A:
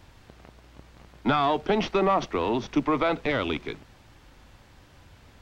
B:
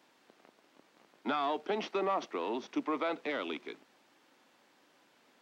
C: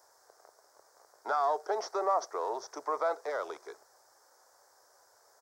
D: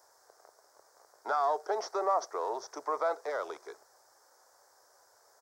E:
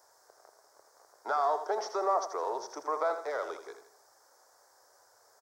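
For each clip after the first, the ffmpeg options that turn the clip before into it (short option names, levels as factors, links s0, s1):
-af "highpass=f=240:w=0.5412,highpass=f=240:w=1.3066,volume=0.355"
-af "firequalizer=gain_entry='entry(100,0);entry(160,-29);entry(250,-29);entry(410,-4);entry(660,1);entry(1600,-3);entry(2700,-28);entry(5200,6)':delay=0.05:min_phase=1,volume=1.68"
-af anull
-af "aecho=1:1:81|162|243|324:0.335|0.124|0.0459|0.017"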